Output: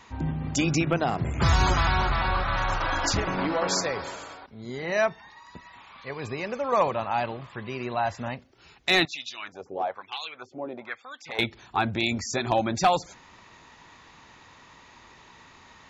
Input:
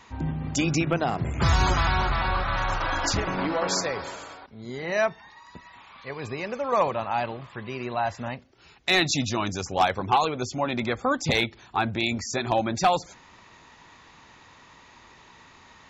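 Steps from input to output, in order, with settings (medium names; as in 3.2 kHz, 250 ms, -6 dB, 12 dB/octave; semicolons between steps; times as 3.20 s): 9.05–11.39 s: LFO band-pass sine 1.1 Hz 390–3600 Hz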